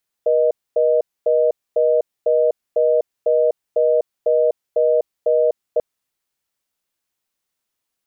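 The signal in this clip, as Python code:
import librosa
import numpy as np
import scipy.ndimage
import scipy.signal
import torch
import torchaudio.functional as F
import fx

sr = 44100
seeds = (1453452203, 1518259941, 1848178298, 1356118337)

y = fx.call_progress(sr, length_s=5.54, kind='reorder tone', level_db=-15.5)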